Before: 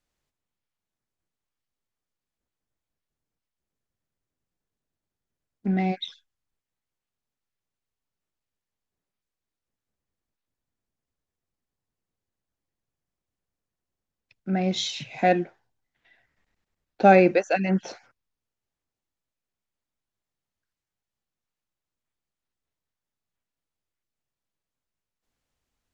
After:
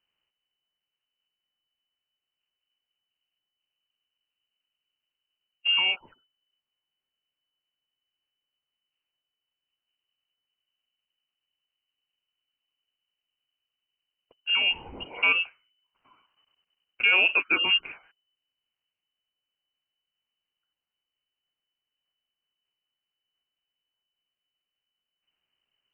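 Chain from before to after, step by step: peak limiter -12.5 dBFS, peak gain reduction 8 dB; frequency inversion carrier 3 kHz

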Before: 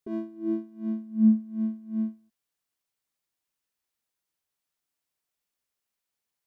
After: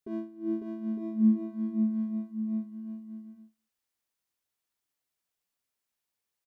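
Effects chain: bouncing-ball echo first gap 550 ms, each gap 0.65×, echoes 5; trim -3 dB

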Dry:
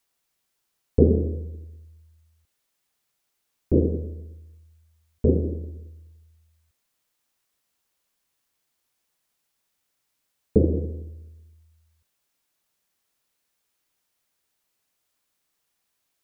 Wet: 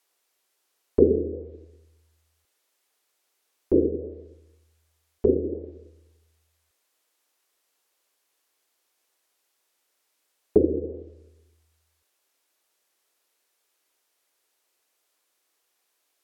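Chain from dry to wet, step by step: low-pass that closes with the level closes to 390 Hz, closed at -19.5 dBFS; resonant low shelf 250 Hz -13 dB, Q 1.5; trim +3.5 dB

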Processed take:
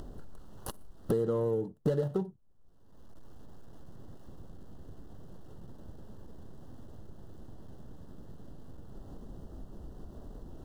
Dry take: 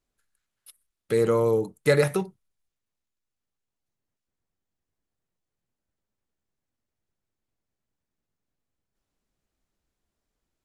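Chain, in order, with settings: median filter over 25 samples; tilt shelf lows +5 dB, about 770 Hz; upward compressor, threshold -25 dBFS; Butterworth band-stop 2.3 kHz, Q 2.3; compression 10:1, threshold -31 dBFS, peak gain reduction 17.5 dB; trim +4.5 dB

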